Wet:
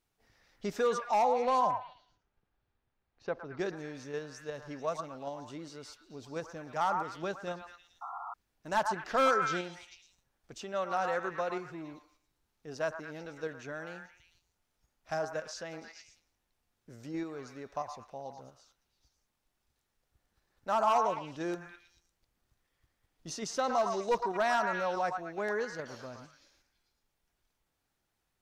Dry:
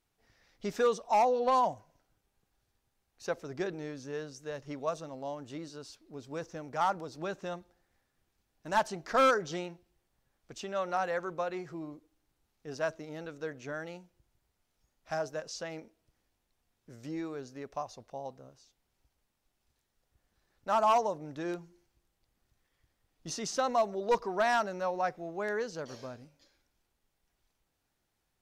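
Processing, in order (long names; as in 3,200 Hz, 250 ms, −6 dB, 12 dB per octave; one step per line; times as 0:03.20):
echo through a band-pass that steps 111 ms, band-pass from 1,100 Hz, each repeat 0.7 octaves, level −3 dB
0:08.01–0:08.34: sound drawn into the spectrogram noise 690–1,400 Hz −39 dBFS
in parallel at −2.5 dB: output level in coarse steps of 18 dB
0:01.71–0:03.59: on the sum: high-frequency loss of the air 260 metres
level −3.5 dB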